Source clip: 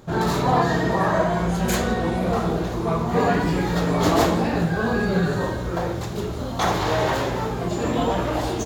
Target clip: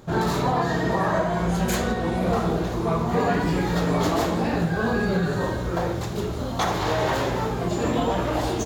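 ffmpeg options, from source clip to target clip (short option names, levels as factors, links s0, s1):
-af "alimiter=limit=0.237:level=0:latency=1:release=376"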